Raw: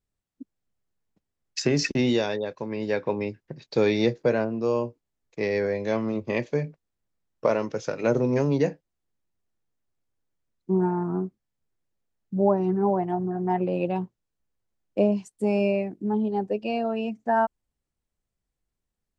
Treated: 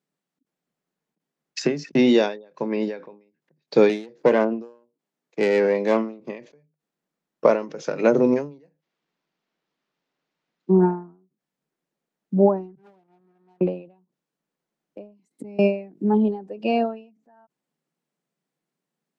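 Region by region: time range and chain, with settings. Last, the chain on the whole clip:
3.89–6.2 self-modulated delay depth 0.14 ms + HPF 150 Hz
8.63–10.72 high shelf 3900 Hz +9 dB + decimation joined by straight lines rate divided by 4×
12.75–13.61 gate -16 dBFS, range -58 dB + sample leveller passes 5
15.19–15.59 flipped gate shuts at -25 dBFS, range -29 dB + small resonant body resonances 270/2100/4000 Hz, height 14 dB, ringing for 25 ms
whole clip: elliptic high-pass 150 Hz, stop band 40 dB; high shelf 4300 Hz -7 dB; ending taper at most 130 dB/s; gain +7 dB

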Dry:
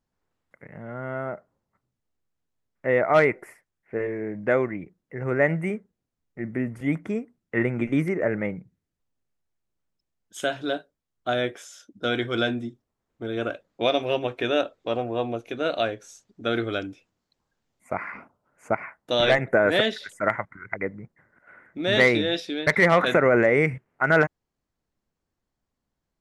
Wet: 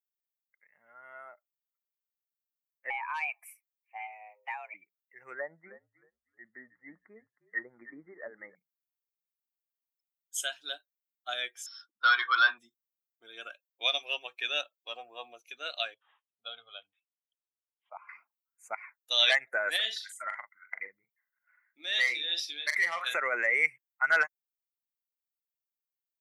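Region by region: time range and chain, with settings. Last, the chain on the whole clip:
2.9–4.74 low shelf 440 Hz -6 dB + compressor 16:1, threshold -23 dBFS + frequency shift +310 Hz
5.34–8.55 treble ducked by the level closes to 920 Hz, closed at -19 dBFS + steep low-pass 2000 Hz 72 dB/oct + frequency-shifting echo 0.313 s, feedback 33%, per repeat -51 Hz, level -10 dB
11.66–12.58 overdrive pedal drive 17 dB, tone 2400 Hz, clips at -12 dBFS + rippled Chebyshev low-pass 5500 Hz, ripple 6 dB + bell 1100 Hz +13.5 dB 0.66 oct
15.94–18.09 fixed phaser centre 780 Hz, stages 4 + careless resampling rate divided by 6×, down none, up filtered
19.76–23.14 doubler 41 ms -7 dB + compressor 2:1, threshold -24 dBFS
whole clip: per-bin expansion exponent 1.5; HPF 1400 Hz 12 dB/oct; high shelf 3700 Hz +8.5 dB; gain +1 dB

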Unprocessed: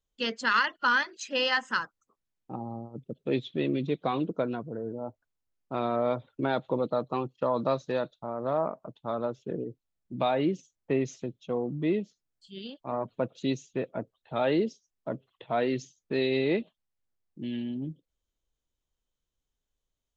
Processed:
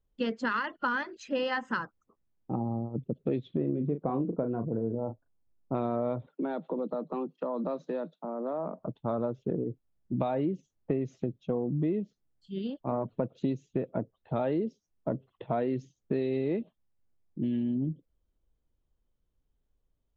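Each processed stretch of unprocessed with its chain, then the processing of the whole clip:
3.57–5.75 LPF 1300 Hz + doubler 35 ms -9.5 dB
6.27–8.79 steep high-pass 160 Hz 96 dB/oct + compressor 2:1, threshold -41 dBFS
whole clip: LPF 1200 Hz 6 dB/oct; low shelf 470 Hz +7.5 dB; compressor, threshold -29 dBFS; gain +2.5 dB

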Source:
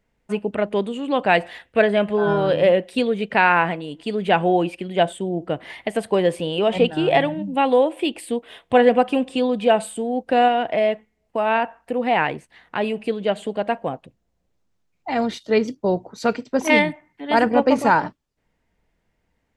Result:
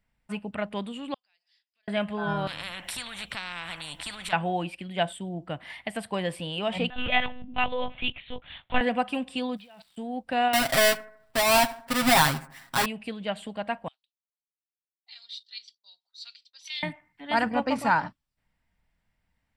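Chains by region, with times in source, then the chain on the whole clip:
1.14–1.88 compressor 3:1, threshold -34 dBFS + band-pass 5000 Hz, Q 17
2.47–4.33 notch 4800 Hz, Q 5.1 + compressor 2:1, threshold -29 dBFS + spectral compressor 4:1
6.9–8.81 tilt +2.5 dB/oct + monotone LPC vocoder at 8 kHz 250 Hz
9.56–9.96 ladder low-pass 5000 Hz, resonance 55% + level quantiser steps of 21 dB + crackle 530/s -49 dBFS
10.53–12.86 half-waves squared off + comb 7.4 ms, depth 87% + analogue delay 77 ms, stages 1024, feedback 44%, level -18 dB
13.88–16.83 expander -43 dBFS + ladder band-pass 4600 Hz, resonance 55% + bell 3700 Hz +7 dB 1.1 oct
whole clip: bell 410 Hz -13.5 dB 1.1 oct; notch 6500 Hz, Q 6.4; gain -3.5 dB

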